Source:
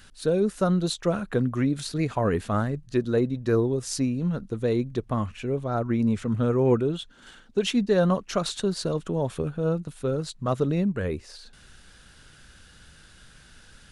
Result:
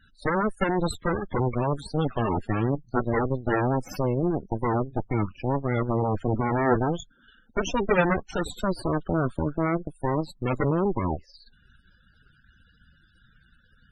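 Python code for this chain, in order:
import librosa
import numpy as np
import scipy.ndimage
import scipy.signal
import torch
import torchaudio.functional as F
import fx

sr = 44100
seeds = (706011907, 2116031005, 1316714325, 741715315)

y = fx.cheby_harmonics(x, sr, harmonics=(3, 6, 8), levels_db=(-16, -10, -6), full_scale_db=-10.0)
y = fx.spec_topn(y, sr, count=32)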